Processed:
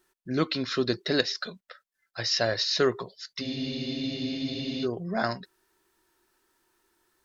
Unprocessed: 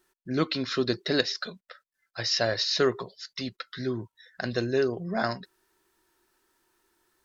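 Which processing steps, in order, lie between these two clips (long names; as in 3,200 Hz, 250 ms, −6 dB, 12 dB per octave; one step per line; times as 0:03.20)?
frozen spectrum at 0:03.44, 1.39 s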